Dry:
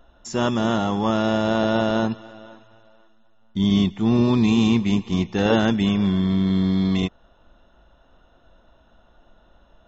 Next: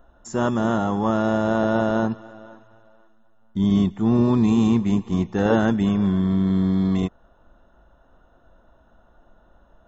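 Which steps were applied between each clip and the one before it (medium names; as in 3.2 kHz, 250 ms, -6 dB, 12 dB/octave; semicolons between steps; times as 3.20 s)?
high-order bell 3.5 kHz -9.5 dB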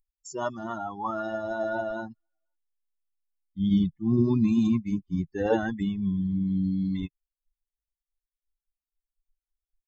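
expander on every frequency bin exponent 3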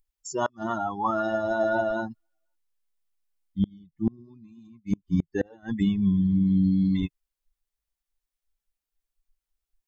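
inverted gate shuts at -18 dBFS, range -32 dB; trim +5 dB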